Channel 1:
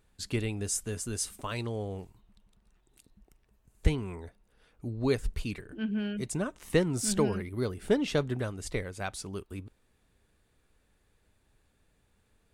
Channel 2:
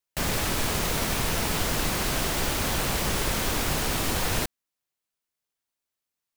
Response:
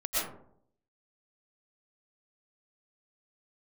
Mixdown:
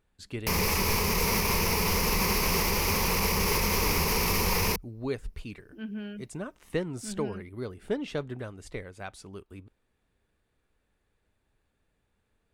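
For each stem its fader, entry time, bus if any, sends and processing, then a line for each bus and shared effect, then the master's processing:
−4.0 dB, 0.00 s, no send, bass and treble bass −2 dB, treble −6 dB
+1.5 dB, 0.30 s, no send, EQ curve with evenly spaced ripples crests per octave 0.83, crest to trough 12 dB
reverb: not used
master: brickwall limiter −16.5 dBFS, peak gain reduction 6 dB

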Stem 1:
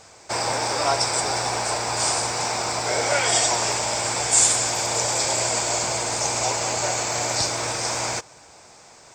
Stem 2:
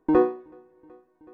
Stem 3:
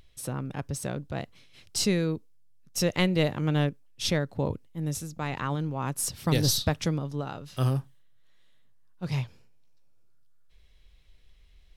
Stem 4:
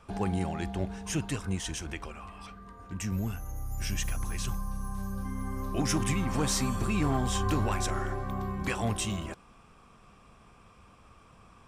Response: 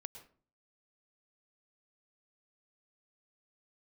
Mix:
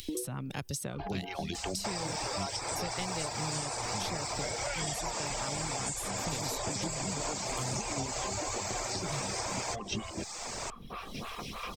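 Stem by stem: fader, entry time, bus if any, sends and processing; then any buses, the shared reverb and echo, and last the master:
−2.0 dB, 1.55 s, bus B, no send, no processing
−17.0 dB, 0.00 s, bus A, no send, spectral envelope exaggerated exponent 3
−9.5 dB, 0.00 s, bus A, send −13.5 dB, no processing
0.0 dB, 0.90 s, bus B, send −3.5 dB, elliptic low-pass filter 5,800 Hz; shaped tremolo saw down 4.1 Hz, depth 65%; phaser with staggered stages 3.2 Hz
bus A: 0.0 dB, high-shelf EQ 3,900 Hz +7.5 dB; downward compressor 3 to 1, threshold −39 dBFS, peak gain reduction 10 dB
bus B: 0.0 dB, notch filter 1,500 Hz, Q 18; downward compressor 4 to 1, threshold −34 dBFS, peak gain reduction 16 dB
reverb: on, RT60 0.45 s, pre-delay 100 ms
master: reverb reduction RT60 0.52 s; multiband upward and downward compressor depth 100%

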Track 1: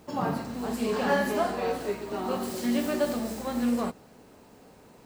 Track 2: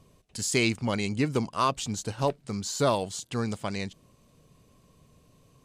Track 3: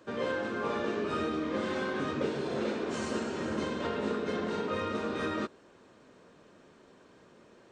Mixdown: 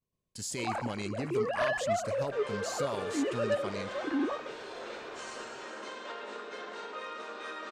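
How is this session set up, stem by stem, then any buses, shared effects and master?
−2.0 dB, 0.50 s, no bus, no send, no echo send, three sine waves on the formant tracks; soft clipping −22.5 dBFS, distortion −11 dB
−7.0 dB, 0.00 s, bus A, no send, echo send −20.5 dB, no processing
+1.0 dB, 2.25 s, bus A, no send, no echo send, high-pass filter 650 Hz 12 dB per octave; downward compressor 1.5 to 1, threshold −47 dBFS, peak gain reduction 5.5 dB
bus A: 0.0 dB, downward expander −51 dBFS; brickwall limiter −26.5 dBFS, peak gain reduction 8 dB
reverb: not used
echo: repeating echo 126 ms, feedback 54%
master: no processing

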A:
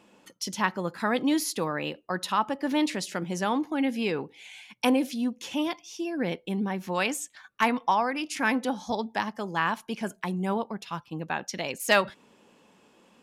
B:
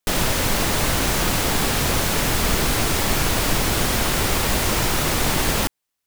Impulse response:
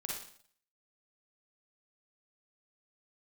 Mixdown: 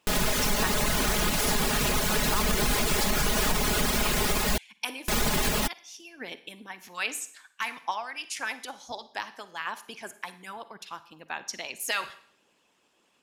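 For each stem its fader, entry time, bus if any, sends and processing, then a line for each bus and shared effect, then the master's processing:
−5.0 dB, 0.00 s, send −10.5 dB, tilt shelving filter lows −5 dB, about 1,200 Hz; harmonic and percussive parts rebalanced harmonic −15 dB
−3.5 dB, 0.00 s, muted 0:04.58–0:05.08, no send, reverb reduction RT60 0.57 s; comb filter 4.8 ms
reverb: on, RT60 0.55 s, pre-delay 39 ms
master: brickwall limiter −15 dBFS, peak gain reduction 6 dB

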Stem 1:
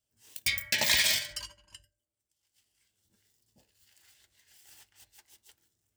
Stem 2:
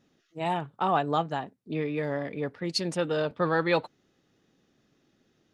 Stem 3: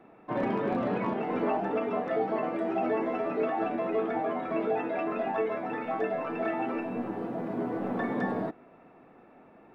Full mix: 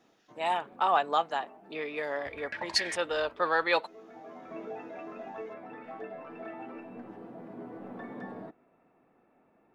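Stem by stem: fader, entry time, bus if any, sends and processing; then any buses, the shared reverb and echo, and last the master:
−3.0 dB, 1.80 s, no send, downward compressor, threshold −32 dBFS, peak gain reduction 11 dB; low-pass on a step sequencer 5.2 Hz 630–1,800 Hz
+2.0 dB, 0.00 s, no send, high-pass filter 630 Hz 12 dB per octave
−11.5 dB, 0.00 s, no send, automatic ducking −13 dB, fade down 0.25 s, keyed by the second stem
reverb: not used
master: no processing

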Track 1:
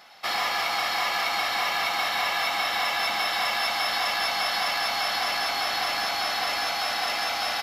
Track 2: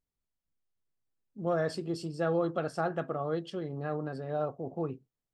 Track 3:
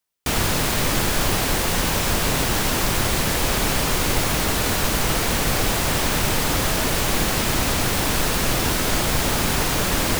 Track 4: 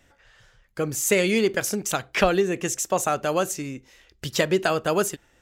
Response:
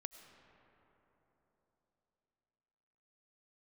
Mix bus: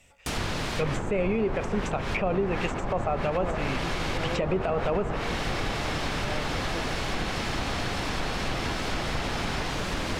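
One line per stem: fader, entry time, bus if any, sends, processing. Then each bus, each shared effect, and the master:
−6.5 dB, 2.10 s, no send, brickwall limiter −22.5 dBFS, peak gain reduction 9 dB
−6.0 dB, 1.95 s, no send, no processing
−8.0 dB, 0.00 s, no send, high-shelf EQ 9,900 Hz +5.5 dB
−2.5 dB, 0.00 s, send −3 dB, thirty-one-band graphic EQ 315 Hz −12 dB, 1,600 Hz −12 dB, 2,500 Hz +10 dB, 8,000 Hz +10 dB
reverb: on, RT60 3.9 s, pre-delay 60 ms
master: treble cut that deepens with the level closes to 1,100 Hz, closed at −17.5 dBFS; brickwall limiter −17.5 dBFS, peak gain reduction 9 dB

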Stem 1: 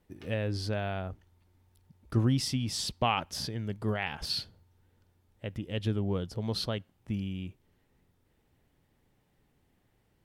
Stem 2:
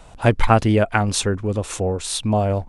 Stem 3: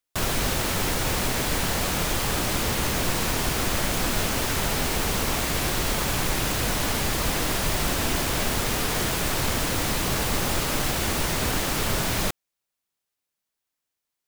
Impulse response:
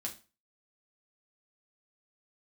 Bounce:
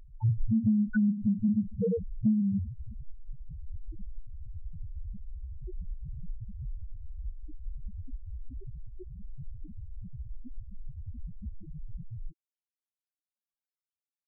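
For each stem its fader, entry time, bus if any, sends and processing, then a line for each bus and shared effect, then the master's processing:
−13.5 dB, 0.00 s, no send, no processing
+0.5 dB, 0.00 s, send −4 dB, Chebyshev low-pass filter 3,000 Hz, order 2; parametric band 200 Hz +8 dB 1.4 octaves; soft clipping −9.5 dBFS, distortion −14 dB
−10.5 dB, 0.00 s, no send, automatic gain control gain up to 14 dB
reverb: on, RT60 0.30 s, pre-delay 5 ms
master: spectral peaks only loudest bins 1; downward compressor 6 to 1, threshold −23 dBFS, peak gain reduction 10.5 dB

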